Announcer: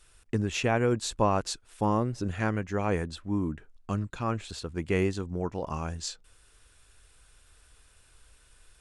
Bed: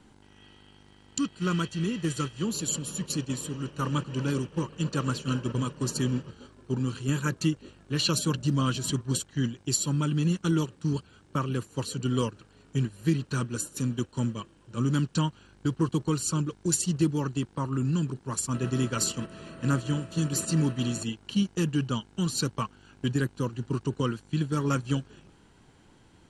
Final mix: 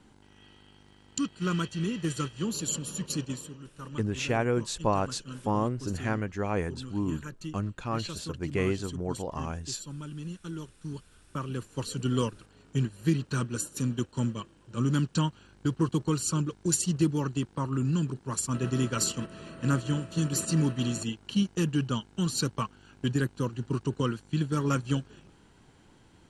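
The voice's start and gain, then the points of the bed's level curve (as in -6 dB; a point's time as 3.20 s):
3.65 s, -1.5 dB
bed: 3.25 s -1.5 dB
3.64 s -13 dB
10.57 s -13 dB
12.00 s -0.5 dB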